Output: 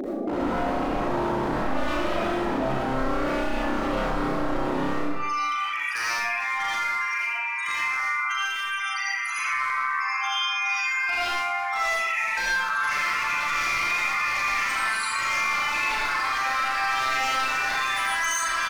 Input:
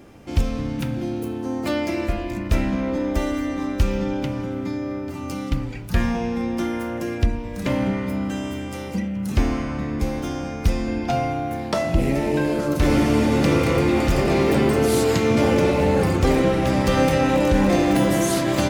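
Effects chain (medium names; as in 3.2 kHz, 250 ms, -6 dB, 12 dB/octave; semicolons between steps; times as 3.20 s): steep high-pass 210 Hz 36 dB/octave, from 5.00 s 1 kHz; upward compressor, threshold -32 dBFS; peak limiter -22.5 dBFS, peak gain reduction 10 dB; loudest bins only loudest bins 16; wavefolder -31.5 dBFS; doubling 38 ms -4 dB; thinning echo 366 ms, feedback 59%, high-pass 720 Hz, level -20.5 dB; reverberation RT60 0.65 s, pre-delay 40 ms, DRR -6.5 dB; level flattener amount 50%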